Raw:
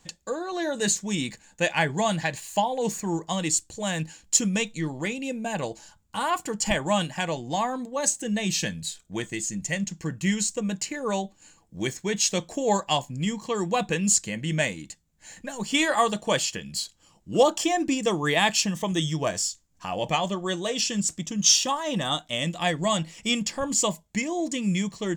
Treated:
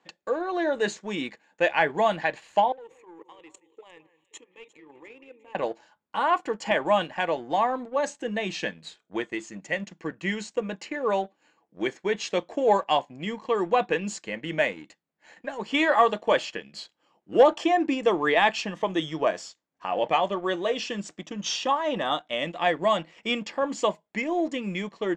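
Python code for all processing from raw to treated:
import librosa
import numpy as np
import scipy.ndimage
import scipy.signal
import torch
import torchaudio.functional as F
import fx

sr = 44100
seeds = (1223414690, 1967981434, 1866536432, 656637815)

y = fx.chain(x, sr, fx.level_steps(step_db=21),
    fx.fixed_phaser(hz=1000.0, stages=8),
    fx.echo_alternate(ms=176, hz=2300.0, feedback_pct=66, wet_db=-13.0), at=(2.72, 5.55))
y = scipy.signal.sosfilt(scipy.signal.cheby1(2, 1.0, 380.0, 'highpass', fs=sr, output='sos'), y)
y = fx.leveller(y, sr, passes=1)
y = scipy.signal.sosfilt(scipy.signal.butter(2, 2400.0, 'lowpass', fs=sr, output='sos'), y)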